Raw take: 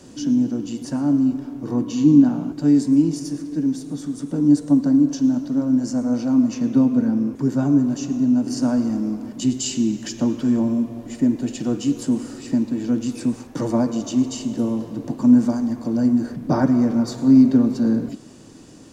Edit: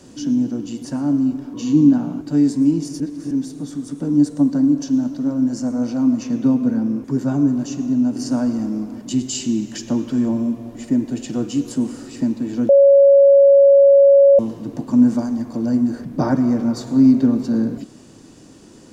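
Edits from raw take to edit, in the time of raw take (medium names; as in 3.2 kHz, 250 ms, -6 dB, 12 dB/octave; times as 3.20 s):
1.54–1.85 s: delete
3.31–3.62 s: reverse
13.00–14.70 s: bleep 557 Hz -6.5 dBFS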